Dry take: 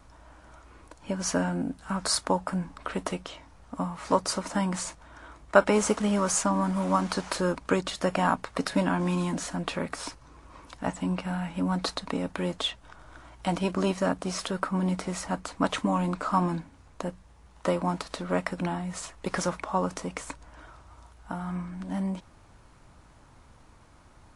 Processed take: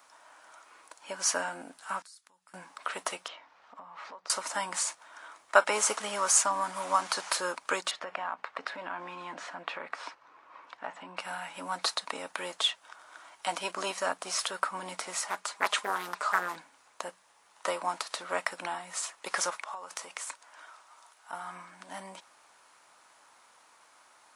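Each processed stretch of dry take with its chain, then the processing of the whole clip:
0:02.02–0:02.54: guitar amp tone stack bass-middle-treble 6-0-2 + downward compressor 8 to 1, threshold −54 dBFS
0:03.28–0:04.30: downward compressor 10 to 1, threshold −37 dBFS + high-frequency loss of the air 230 metres + one half of a high-frequency compander encoder only
0:07.91–0:11.17: low-pass filter 2,500 Hz + downward compressor 10 to 1, threshold −27 dBFS
0:15.25–0:16.56: low-shelf EQ 190 Hz −9 dB + comb filter 4.9 ms, depth 48% + highs frequency-modulated by the lows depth 0.86 ms
0:19.50–0:21.33: low-shelf EQ 320 Hz −8.5 dB + downward compressor 16 to 1, threshold −34 dBFS
whole clip: high-pass filter 800 Hz 12 dB per octave; high-shelf EQ 8,600 Hz +7 dB; level +1.5 dB

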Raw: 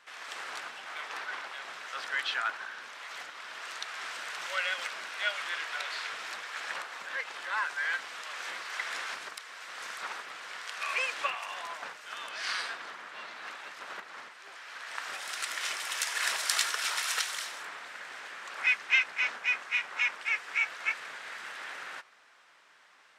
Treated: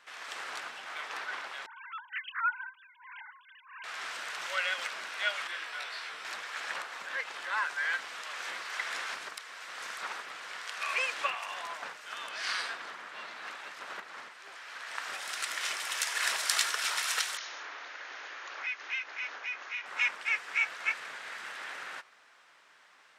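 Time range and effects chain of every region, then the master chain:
0:01.66–0:03.84: three sine waves on the formant tracks + phaser with staggered stages 1.5 Hz
0:05.47–0:06.25: notch filter 6,700 Hz, Q 10 + micro pitch shift up and down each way 17 cents
0:17.37–0:19.86: linear-phase brick-wall band-pass 250–6,900 Hz + downward compressor 2 to 1, threshold −39 dBFS
whole clip: no processing

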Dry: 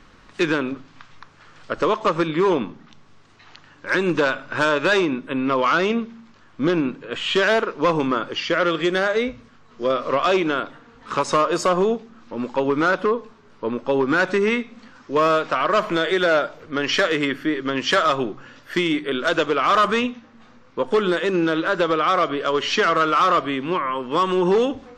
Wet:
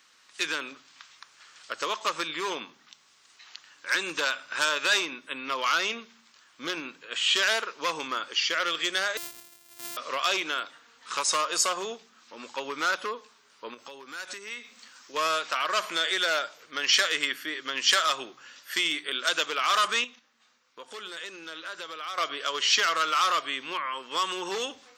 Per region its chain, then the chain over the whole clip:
0:09.17–0:09.97: samples sorted by size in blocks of 128 samples + low-shelf EQ 400 Hz +7 dB + downward compressor, threshold −31 dBFS
0:13.74–0:15.14: high-shelf EQ 7,900 Hz +7.5 dB + downward compressor 8 to 1, threshold −28 dBFS
0:20.04–0:22.18: noise gate −39 dBFS, range −8 dB + downward compressor 2 to 1, threshold −34 dBFS
whole clip: first difference; mains-hum notches 60/120/180 Hz; automatic gain control gain up to 4 dB; level +4 dB

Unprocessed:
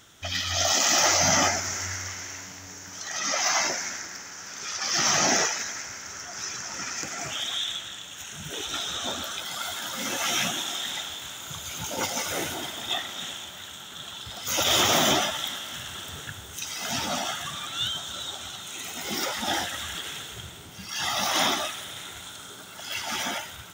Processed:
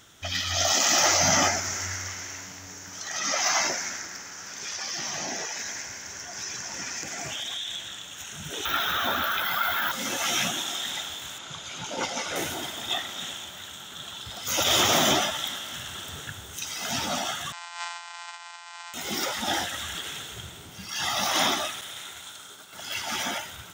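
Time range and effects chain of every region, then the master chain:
0:04.53–0:07.88: notch filter 1,300 Hz, Q 6.6 + downward compressor, threshold −29 dBFS
0:08.65–0:09.92: running median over 3 samples + drawn EQ curve 510 Hz 0 dB, 1,500 Hz +10 dB, 9,500 Hz −14 dB, 13,000 Hz +14 dB + envelope flattener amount 50%
0:11.38–0:12.36: low-pass filter 5,700 Hz + parametric band 67 Hz −13 dB 1.2 octaves
0:17.52–0:18.94: samples sorted by size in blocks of 256 samples + linear-phase brick-wall band-pass 690–8,500 Hz + comb filter 3.8 ms, depth 49%
0:21.81–0:22.73: downward expander −41 dBFS + low-shelf EQ 420 Hz −8.5 dB
whole clip: no processing

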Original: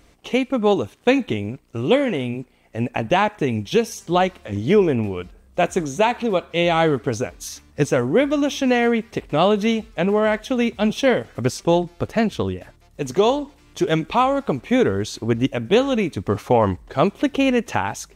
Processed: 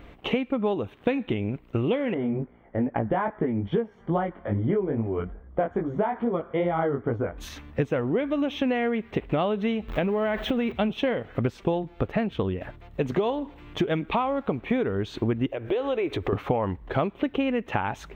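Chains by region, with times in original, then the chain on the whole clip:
0:02.14–0:07.38: Savitzky-Golay smoothing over 41 samples + chorus effect 2.4 Hz, delay 17 ms, depth 4.9 ms
0:09.88–0:10.72: converter with a step at zero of −32.5 dBFS + downward compressor 2.5 to 1, threshold −21 dBFS
0:15.46–0:16.33: downward compressor 10 to 1, threshold −30 dBFS + drawn EQ curve 110 Hz 0 dB, 200 Hz −15 dB, 360 Hz +9 dB, 1,200 Hz +4 dB
whole clip: high-shelf EQ 4,900 Hz −8.5 dB; downward compressor 10 to 1, threshold −29 dBFS; flat-topped bell 7,400 Hz −16 dB; level +7 dB

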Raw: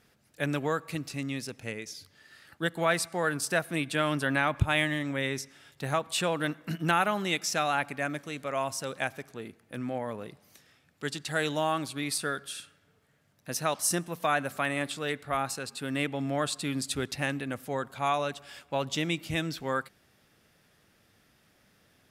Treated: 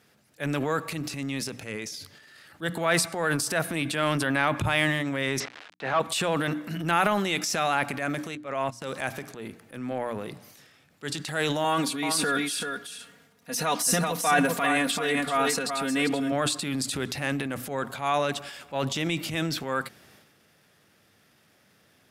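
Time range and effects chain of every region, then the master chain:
0:05.40–0:06.00: bit-depth reduction 8 bits, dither none + mid-hump overdrive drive 16 dB, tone 2,500 Hz, clips at −13.5 dBFS + band-pass filter 150–3,500 Hz
0:08.35–0:08.82: low-pass filter 3,800 Hz 6 dB per octave + noise gate −36 dBFS, range −17 dB
0:11.64–0:16.32: comb filter 4.2 ms, depth 84% + single-tap delay 386 ms −7 dB
whole clip: high-pass filter 95 Hz; mains-hum notches 60/120/180/240/300 Hz; transient designer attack −6 dB, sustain +8 dB; level +3 dB

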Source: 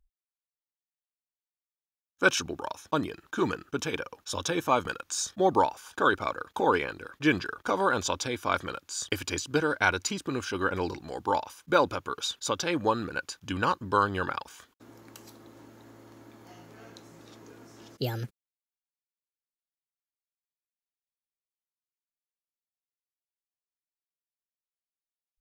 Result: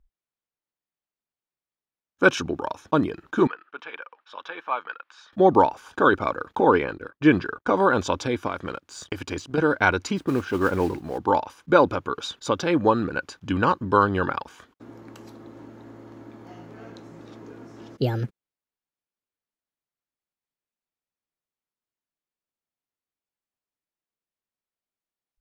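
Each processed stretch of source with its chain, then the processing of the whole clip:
0:03.47–0:05.33: high-pass filter 1,200 Hz + high-frequency loss of the air 360 metres
0:06.55–0:07.74: noise gate −45 dBFS, range −29 dB + high-shelf EQ 4,400 Hz −5.5 dB
0:08.47–0:09.58: mu-law and A-law mismatch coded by A + downward compressor, threshold −29 dBFS
0:10.16–0:11.18: high-shelf EQ 4,200 Hz −11 dB + noise that follows the level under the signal 14 dB
whole clip: low-pass filter 1,900 Hz 6 dB per octave; parametric band 240 Hz +3 dB 1.9 octaves; level +6 dB

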